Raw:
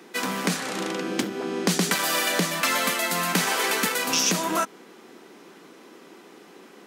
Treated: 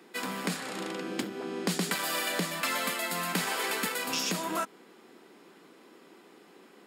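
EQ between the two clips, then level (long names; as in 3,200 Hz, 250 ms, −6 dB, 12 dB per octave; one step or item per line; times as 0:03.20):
notch filter 6,000 Hz, Q 7.2
−7.0 dB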